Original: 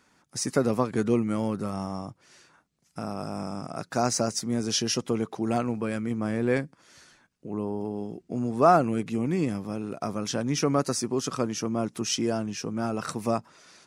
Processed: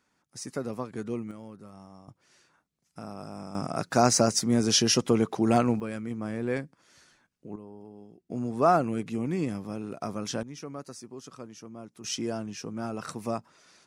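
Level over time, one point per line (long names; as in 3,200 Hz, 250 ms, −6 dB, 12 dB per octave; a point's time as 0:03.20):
−9.5 dB
from 0:01.31 −16.5 dB
from 0:02.08 −7 dB
from 0:03.55 +4 dB
from 0:05.80 −5 dB
from 0:07.56 −15 dB
from 0:08.30 −3 dB
from 0:10.43 −15.5 dB
from 0:12.04 −5 dB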